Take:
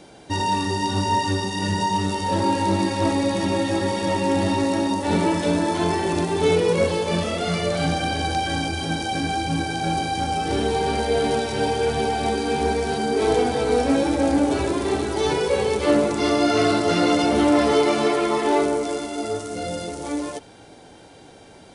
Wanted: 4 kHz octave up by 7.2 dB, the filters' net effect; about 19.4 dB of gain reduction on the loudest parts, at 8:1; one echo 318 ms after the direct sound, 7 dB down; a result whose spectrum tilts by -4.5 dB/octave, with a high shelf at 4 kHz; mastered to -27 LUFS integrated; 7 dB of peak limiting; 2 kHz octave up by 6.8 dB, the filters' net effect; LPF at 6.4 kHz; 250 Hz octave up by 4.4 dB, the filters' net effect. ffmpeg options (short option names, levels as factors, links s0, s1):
-af "lowpass=6400,equalizer=f=250:t=o:g=5.5,equalizer=f=2000:t=o:g=6,highshelf=f=4000:g=5.5,equalizer=f=4000:t=o:g=4.5,acompressor=threshold=0.0251:ratio=8,alimiter=level_in=1.68:limit=0.0631:level=0:latency=1,volume=0.596,aecho=1:1:318:0.447,volume=2.82"